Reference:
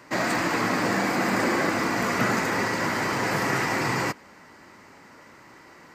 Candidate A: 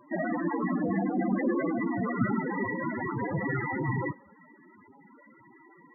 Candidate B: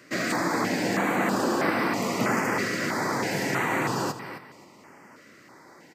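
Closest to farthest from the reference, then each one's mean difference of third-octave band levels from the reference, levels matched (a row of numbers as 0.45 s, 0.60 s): B, A; 2.5 dB, 16.5 dB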